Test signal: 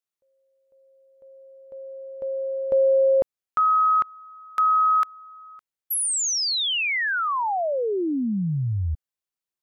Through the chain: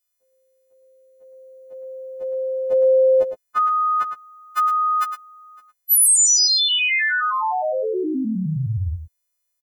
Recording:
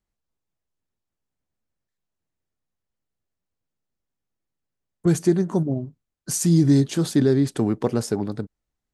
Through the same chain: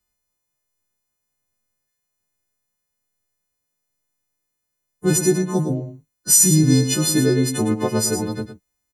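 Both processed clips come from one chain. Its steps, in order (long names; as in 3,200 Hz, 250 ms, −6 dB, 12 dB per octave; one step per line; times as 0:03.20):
every partial snapped to a pitch grid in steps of 3 semitones
single-tap delay 109 ms −9.5 dB
level +1.5 dB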